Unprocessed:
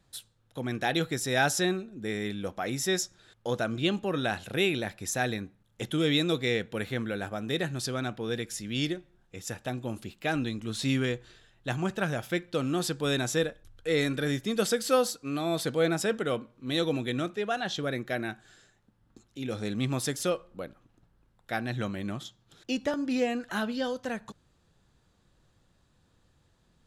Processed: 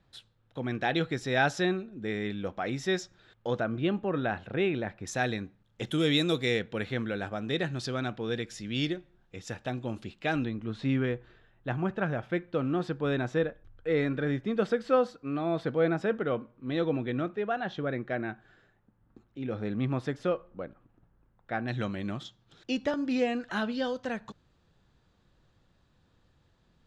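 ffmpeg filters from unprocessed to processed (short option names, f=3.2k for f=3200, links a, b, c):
-af "asetnsamples=n=441:p=0,asendcmd='3.6 lowpass f 1900;5.07 lowpass f 4900;5.87 lowpass f 10000;6.59 lowpass f 4700;10.45 lowpass f 1900;21.68 lowpass f 5000',lowpass=3.5k"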